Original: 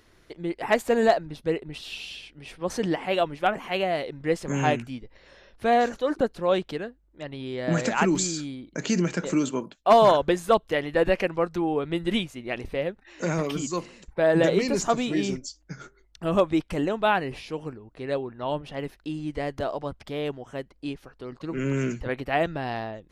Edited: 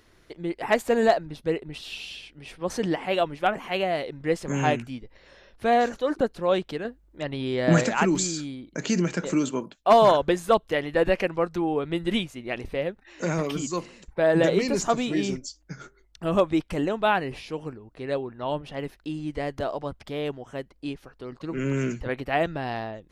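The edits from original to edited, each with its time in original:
0:06.85–0:07.84: clip gain +5.5 dB

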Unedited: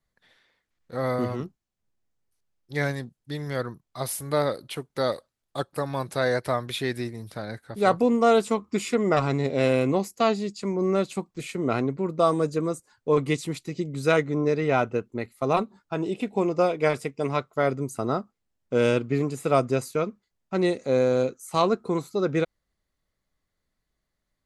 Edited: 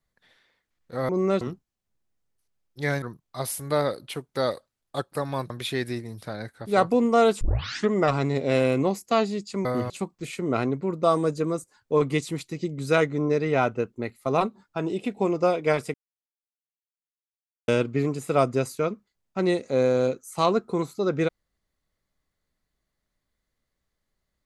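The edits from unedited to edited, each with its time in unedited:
0:01.09–0:01.34: swap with 0:10.74–0:11.06
0:02.95–0:03.63: remove
0:06.11–0:06.59: remove
0:08.50: tape start 0.50 s
0:17.10–0:18.84: silence

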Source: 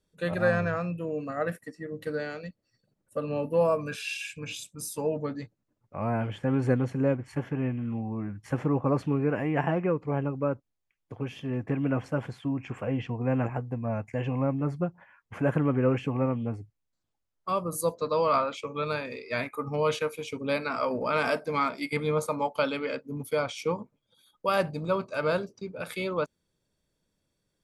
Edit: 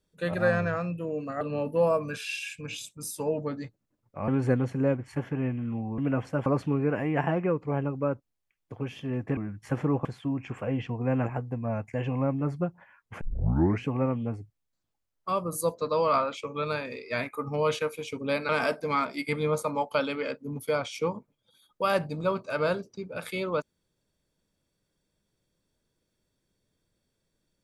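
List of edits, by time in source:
0:01.41–0:03.19: remove
0:06.06–0:06.48: remove
0:08.18–0:08.86: swap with 0:11.77–0:12.25
0:15.41: tape start 0.64 s
0:20.69–0:21.13: remove

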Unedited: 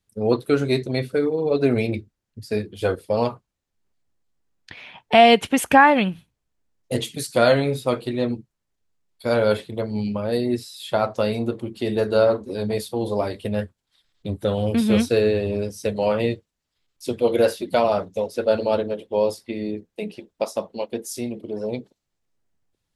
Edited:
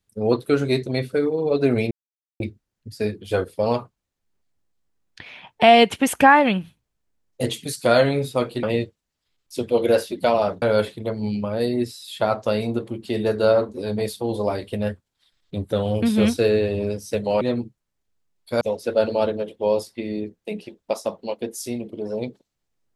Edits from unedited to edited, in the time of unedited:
0:01.91: splice in silence 0.49 s
0:08.14–0:09.34: swap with 0:16.13–0:18.12

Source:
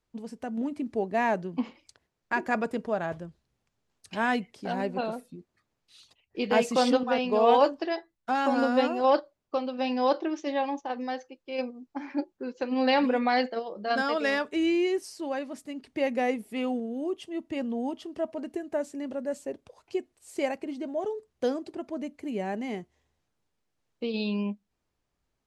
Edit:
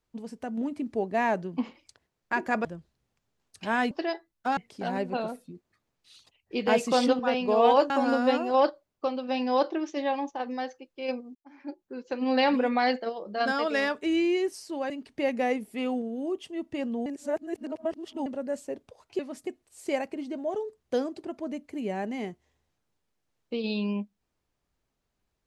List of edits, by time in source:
0:02.65–0:03.15: remove
0:07.74–0:08.40: move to 0:04.41
0:11.85–0:12.74: fade in
0:15.40–0:15.68: move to 0:19.97
0:17.84–0:19.04: reverse

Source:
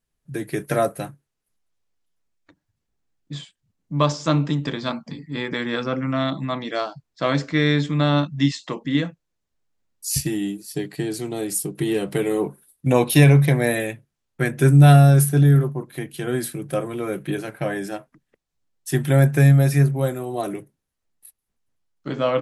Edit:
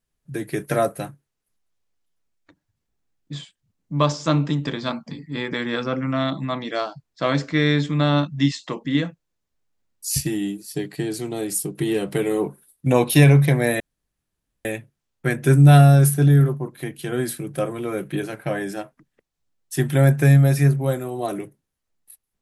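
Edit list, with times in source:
0:13.80: splice in room tone 0.85 s

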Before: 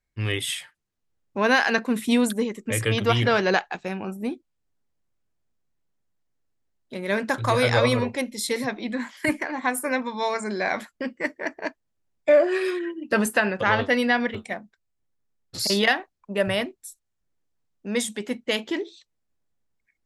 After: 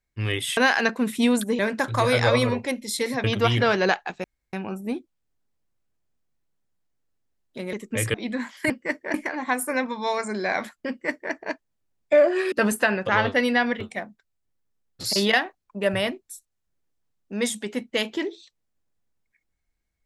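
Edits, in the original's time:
0:00.57–0:01.46: remove
0:02.48–0:02.89: swap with 0:07.09–0:08.74
0:03.89: splice in room tone 0.29 s
0:11.05–0:11.49: duplicate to 0:09.30
0:12.68–0:13.06: remove

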